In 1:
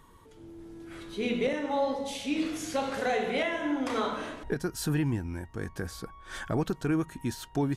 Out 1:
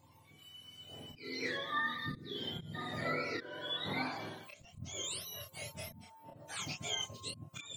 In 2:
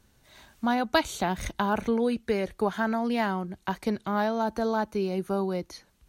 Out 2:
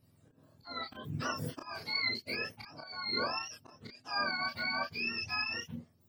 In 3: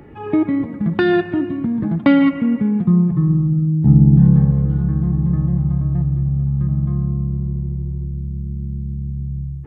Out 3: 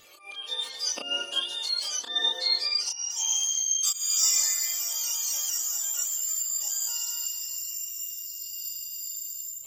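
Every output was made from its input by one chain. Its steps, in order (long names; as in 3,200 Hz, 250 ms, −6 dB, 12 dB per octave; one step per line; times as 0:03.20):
frequency axis turned over on the octave scale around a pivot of 1,000 Hz
volume swells 335 ms
multi-voice chorus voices 6, 0.24 Hz, delay 30 ms, depth 4.6 ms
level −1.5 dB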